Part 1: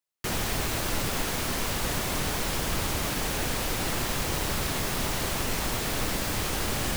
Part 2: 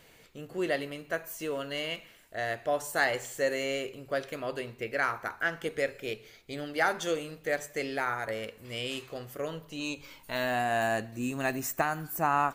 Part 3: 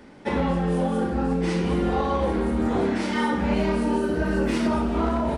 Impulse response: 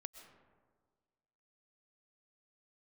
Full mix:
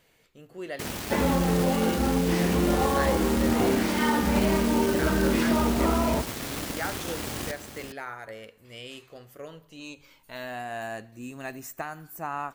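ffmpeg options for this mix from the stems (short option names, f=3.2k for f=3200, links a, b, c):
-filter_complex "[0:a]highpass=54,equalizer=f=280:t=o:w=0.77:g=6,aeval=exprs='0.168*(cos(1*acos(clip(val(0)/0.168,-1,1)))-cos(1*PI/2))+0.0188*(cos(7*acos(clip(val(0)/0.168,-1,1)))-cos(7*PI/2))':c=same,adelay=550,volume=-4dB,asplit=2[a][b];[b]volume=-9.5dB[c];[1:a]volume=-6.5dB[d];[2:a]adelay=850,volume=-0.5dB[e];[c]aecho=0:1:408:1[f];[a][d][e][f]amix=inputs=4:normalize=0"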